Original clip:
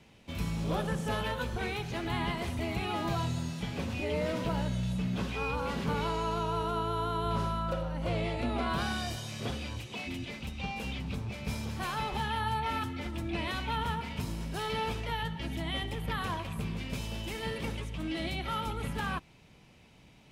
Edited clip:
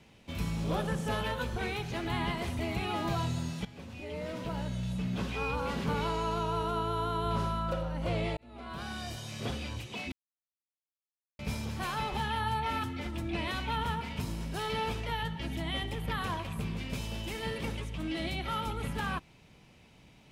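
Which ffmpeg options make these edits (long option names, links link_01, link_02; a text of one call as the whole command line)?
ffmpeg -i in.wav -filter_complex "[0:a]asplit=5[link_01][link_02][link_03][link_04][link_05];[link_01]atrim=end=3.65,asetpts=PTS-STARTPTS,afade=type=out:start_time=3.646:duration=0.004:curve=hsin:silence=0.199526[link_06];[link_02]atrim=start=3.65:end=8.37,asetpts=PTS-STARTPTS,afade=type=in:duration=1.71:silence=0.199526,afade=type=out:start_time=4.716:duration=0.004:curve=hsin[link_07];[link_03]atrim=start=8.37:end=10.12,asetpts=PTS-STARTPTS,afade=type=in:duration=1.1,afade=type=out:start_time=1.746:duration=0.004:curve=hsin[link_08];[link_04]atrim=start=10.12:end=11.39,asetpts=PTS-STARTPTS,volume=0[link_09];[link_05]atrim=start=11.39,asetpts=PTS-STARTPTS,afade=type=in:duration=0.004:curve=hsin[link_10];[link_06][link_07][link_08][link_09][link_10]concat=n=5:v=0:a=1" out.wav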